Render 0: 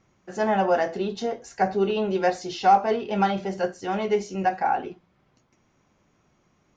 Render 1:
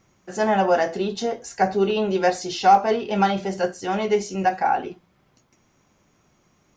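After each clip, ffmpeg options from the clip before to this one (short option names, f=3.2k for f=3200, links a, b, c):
-af "highshelf=f=6.3k:g=10,volume=2.5dB"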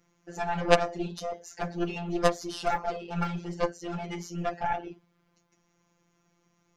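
-af "afftfilt=real='hypot(re,im)*cos(PI*b)':imag='0':win_size=1024:overlap=0.75,aeval=exprs='0.562*(cos(1*acos(clip(val(0)/0.562,-1,1)))-cos(1*PI/2))+0.112*(cos(3*acos(clip(val(0)/0.562,-1,1)))-cos(3*PI/2))+0.141*(cos(4*acos(clip(val(0)/0.562,-1,1)))-cos(4*PI/2))+0.0282*(cos(6*acos(clip(val(0)/0.562,-1,1)))-cos(6*PI/2))':c=same,volume=3.5dB"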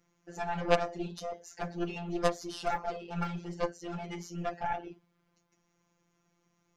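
-af "asoftclip=type=tanh:threshold=-4dB,volume=-4dB"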